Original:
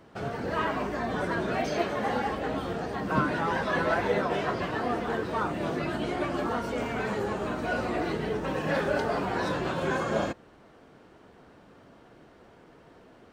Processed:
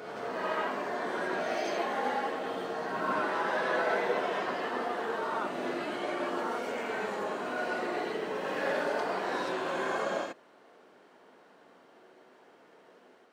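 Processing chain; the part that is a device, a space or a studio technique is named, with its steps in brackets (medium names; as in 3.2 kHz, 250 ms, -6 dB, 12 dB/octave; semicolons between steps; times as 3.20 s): ghost voice (reverse; reverberation RT60 1.1 s, pre-delay 63 ms, DRR -1.5 dB; reverse; high-pass 380 Hz 12 dB/octave); trim -5.5 dB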